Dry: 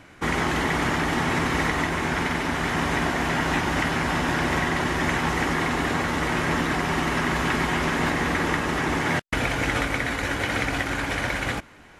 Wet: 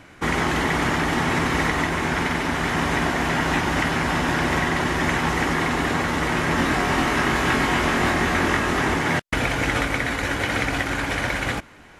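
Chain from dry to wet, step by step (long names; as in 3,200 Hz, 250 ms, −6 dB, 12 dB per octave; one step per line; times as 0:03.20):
0:06.56–0:08.94: double-tracking delay 22 ms −3.5 dB
level +2 dB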